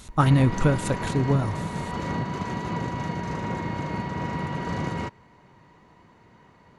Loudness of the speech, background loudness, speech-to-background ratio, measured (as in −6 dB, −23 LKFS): −23.5 LKFS, −30.5 LKFS, 7.0 dB